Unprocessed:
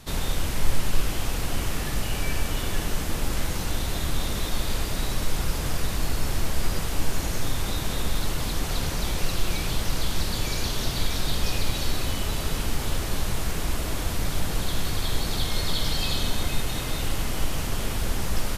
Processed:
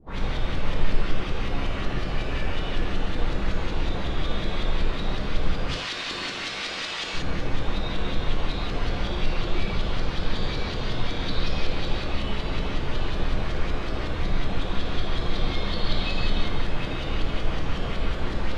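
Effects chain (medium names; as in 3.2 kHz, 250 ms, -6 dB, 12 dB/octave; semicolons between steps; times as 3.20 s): 5.68–7.14 s: frequency weighting ITU-R 468; LFO low-pass saw up 5.4 Hz 320–4300 Hz; gated-style reverb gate 200 ms flat, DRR -5.5 dB; trim -7.5 dB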